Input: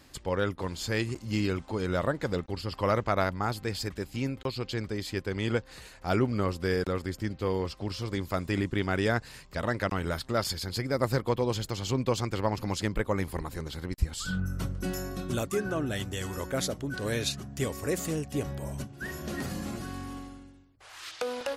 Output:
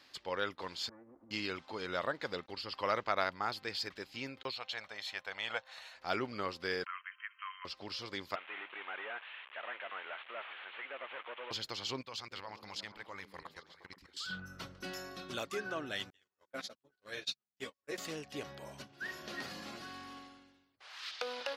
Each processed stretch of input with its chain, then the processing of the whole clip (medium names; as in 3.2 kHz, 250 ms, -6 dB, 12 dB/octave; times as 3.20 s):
0.89–1.31 s: comb filter that takes the minimum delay 3.5 ms + Bessel low-pass 810 Hz, order 8 + compression 12:1, threshold -41 dBFS
4.53–5.95 s: Butterworth band-stop 4.8 kHz, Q 7.4 + resonant low shelf 490 Hz -10 dB, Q 3
6.86–7.65 s: brick-wall FIR band-pass 980–3200 Hz + three bands compressed up and down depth 70%
8.35–11.51 s: one-bit delta coder 16 kbps, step -41 dBFS + high-pass 640 Hz + tilt EQ +2 dB/octave
12.01–14.30 s: peaking EQ 330 Hz -9 dB 2.1 oct + level held to a coarse grid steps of 19 dB + repeats whose band climbs or falls 118 ms, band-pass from 220 Hz, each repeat 0.7 oct, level -4 dB
16.10–17.98 s: gate -30 dBFS, range -45 dB + three-phase chorus
whole clip: high-pass 970 Hz 6 dB/octave; resonant high shelf 6.2 kHz -10.5 dB, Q 1.5; trim -2 dB